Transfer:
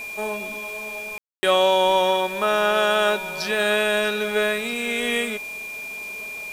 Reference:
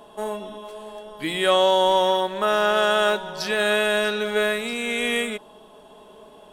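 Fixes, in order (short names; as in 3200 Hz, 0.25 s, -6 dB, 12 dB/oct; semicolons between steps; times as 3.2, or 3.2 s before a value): de-click; notch 2400 Hz, Q 30; room tone fill 1.18–1.43; noise print and reduce 14 dB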